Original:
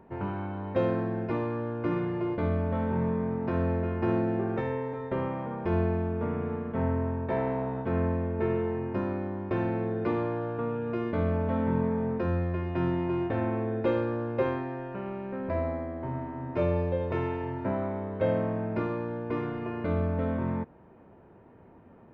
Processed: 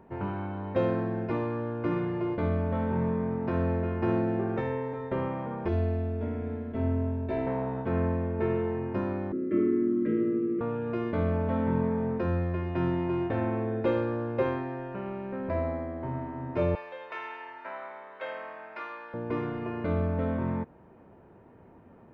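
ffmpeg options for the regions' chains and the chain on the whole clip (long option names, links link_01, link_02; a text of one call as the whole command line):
ffmpeg -i in.wav -filter_complex "[0:a]asettb=1/sr,asplit=3[link_01][link_02][link_03];[link_01]atrim=end=5.684[link_04];[link_02]atrim=start=5.68:end=7.47,asetpts=PTS-STARTPTS,afade=type=in:duration=0.004:curve=qsin,afade=type=out:start_time=1.786:duration=0.004:curve=qsin,equalizer=frequency=1100:width_type=o:width=1.5:gain=-11.5,bandreject=frequency=50:width_type=h:width=6,bandreject=frequency=100:width_type=h:width=6,bandreject=frequency=150:width_type=h:width=6,bandreject=frequency=200:width_type=h:width=6,bandreject=frequency=250:width_type=h:width=6,bandreject=frequency=300:width_type=h:width=6,bandreject=frequency=350:width_type=h:width=6,bandreject=frequency=400:width_type=h:width=6,aecho=1:1:3:0.82,atrim=end_sample=78939[link_05];[link_03]atrim=start=7.466[link_06];[link_04][link_05]acrossfade=duration=0.004:curve1=hsin:curve2=qsin[link_07];[link_07][link_06]acrossfade=duration=0.004:curve1=qsin:curve2=hsin,asettb=1/sr,asplit=3[link_08][link_09][link_10];[link_08]atrim=end=9.324[link_11];[link_09]atrim=start=9.32:end=10.61,asetpts=PTS-STARTPTS,afade=type=in:duration=0.004:curve=qsin,afade=type=out:start_time=1.286:duration=0.004:curve=qsin,afreqshift=-460,asuperstop=centerf=810:order=12:qfactor=1.8,highpass=frequency=180:width=0.5412,highpass=frequency=180:width=1.3066,equalizer=frequency=220:width_type=q:width=4:gain=6,equalizer=frequency=330:width_type=q:width=4:gain=10,equalizer=frequency=470:width_type=q:width=4:gain=6,equalizer=frequency=670:width_type=q:width=4:gain=-5,equalizer=frequency=1000:width_type=q:width=4:gain=-9,equalizer=frequency=1500:width_type=q:width=4:gain=-4,lowpass=frequency=2600:width=0.5412,lowpass=frequency=2600:width=1.3066[link_12];[link_10]atrim=start=10.606[link_13];[link_11][link_12]acrossfade=duration=0.004:curve1=hsin:curve2=qsin[link_14];[link_14][link_13]acrossfade=duration=0.004:curve1=qsin:curve2=hsin,asettb=1/sr,asplit=3[link_15][link_16][link_17];[link_15]atrim=end=16.754[link_18];[link_16]atrim=start=16.75:end=19.14,asetpts=PTS-STARTPTS,afade=type=in:duration=0.004:curve=qsin,afade=type=out:start_time=2.386:duration=0.004:curve=qsin,highpass=1100,equalizer=frequency=1800:width=0.59:gain=3[link_19];[link_17]atrim=start=19.136[link_20];[link_18][link_19]acrossfade=duration=0.004:curve1=hsin:curve2=qsin[link_21];[link_21][link_20]acrossfade=duration=0.004:curve1=qsin:curve2=hsin" out.wav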